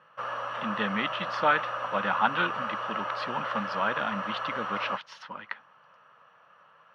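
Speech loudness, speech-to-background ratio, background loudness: -31.0 LUFS, 2.5 dB, -33.5 LUFS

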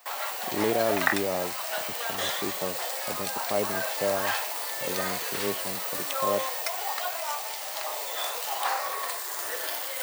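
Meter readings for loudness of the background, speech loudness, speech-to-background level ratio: -29.5 LUFS, -33.0 LUFS, -3.5 dB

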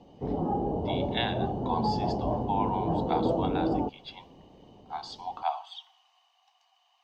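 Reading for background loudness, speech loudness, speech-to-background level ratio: -30.0 LUFS, -36.0 LUFS, -6.0 dB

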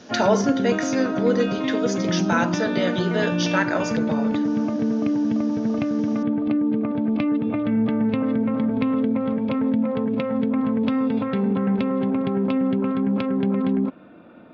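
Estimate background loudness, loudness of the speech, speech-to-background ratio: -23.0 LUFS, -25.0 LUFS, -2.0 dB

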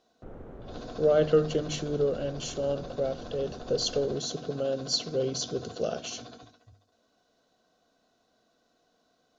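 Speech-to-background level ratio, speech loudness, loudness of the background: 17.0 dB, -29.5 LUFS, -46.5 LUFS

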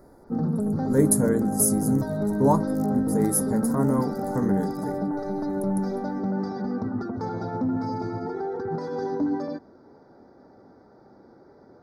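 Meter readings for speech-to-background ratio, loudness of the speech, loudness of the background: 2.0 dB, -25.5 LUFS, -27.5 LUFS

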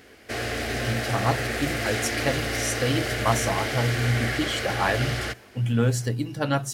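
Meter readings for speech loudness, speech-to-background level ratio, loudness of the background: -27.0 LUFS, 1.0 dB, -28.0 LUFS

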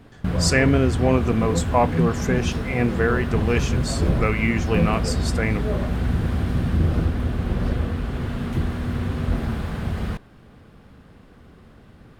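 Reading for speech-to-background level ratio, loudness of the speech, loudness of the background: 1.0 dB, -23.5 LUFS, -24.5 LUFS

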